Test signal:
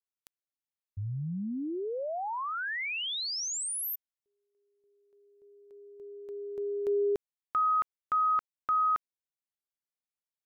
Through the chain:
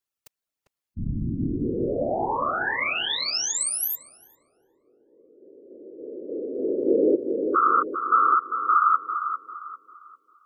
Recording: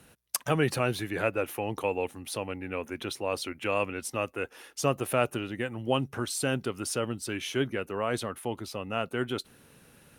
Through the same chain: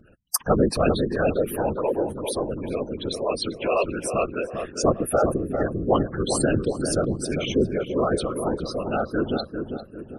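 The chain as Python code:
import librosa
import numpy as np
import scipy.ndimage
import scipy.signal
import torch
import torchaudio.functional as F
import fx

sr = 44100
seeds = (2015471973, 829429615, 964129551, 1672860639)

p1 = fx.spec_gate(x, sr, threshold_db=-10, keep='strong')
p2 = fx.whisperise(p1, sr, seeds[0])
p3 = p2 + fx.echo_filtered(p2, sr, ms=398, feedback_pct=45, hz=1200.0, wet_db=-5.5, dry=0)
y = p3 * librosa.db_to_amplitude(7.5)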